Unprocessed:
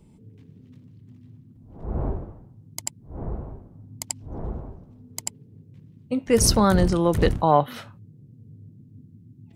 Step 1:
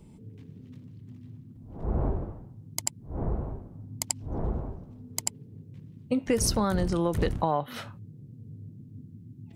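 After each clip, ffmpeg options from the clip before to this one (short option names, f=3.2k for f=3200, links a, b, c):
-af "acompressor=threshold=-24dB:ratio=8,volume=2dB"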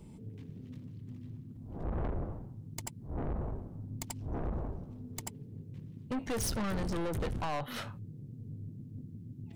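-af "aeval=exprs='(tanh(44.7*val(0)+0.35)-tanh(0.35))/44.7':c=same,volume=1.5dB"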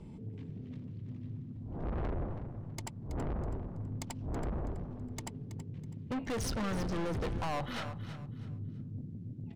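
-af "adynamicsmooth=sensitivity=7:basefreq=4.9k,asoftclip=type=tanh:threshold=-34dB,aecho=1:1:326|652|978:0.251|0.0754|0.0226,volume=3dB"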